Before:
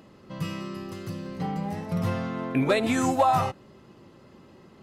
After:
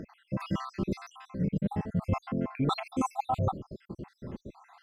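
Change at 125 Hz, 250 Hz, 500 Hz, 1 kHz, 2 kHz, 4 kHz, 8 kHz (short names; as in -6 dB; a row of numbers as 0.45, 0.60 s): -1.0, -3.5, -9.0, -7.0, -11.5, -6.0, -11.5 dB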